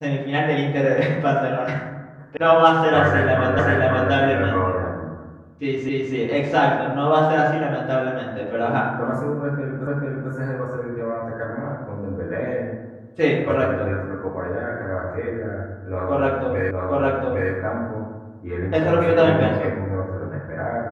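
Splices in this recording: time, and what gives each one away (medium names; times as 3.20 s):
2.37 s: sound stops dead
3.59 s: repeat of the last 0.53 s
5.89 s: repeat of the last 0.26 s
9.87 s: repeat of the last 0.44 s
16.71 s: repeat of the last 0.81 s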